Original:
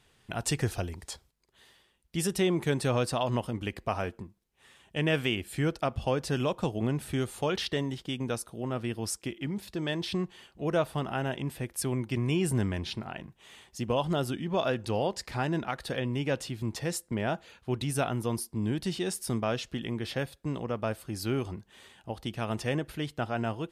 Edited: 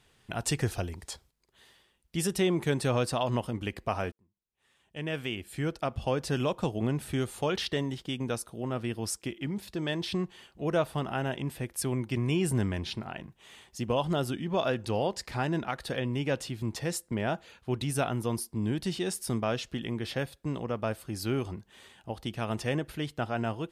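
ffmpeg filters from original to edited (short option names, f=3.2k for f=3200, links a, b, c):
-filter_complex "[0:a]asplit=2[a][b];[a]atrim=end=4.12,asetpts=PTS-STARTPTS,afade=t=out:st=4.116:d=0.004:c=hsin[c];[b]atrim=start=4.12,asetpts=PTS-STARTPTS,afade=t=in:d=2.16[d];[c][d]concat=n=2:v=0:a=1"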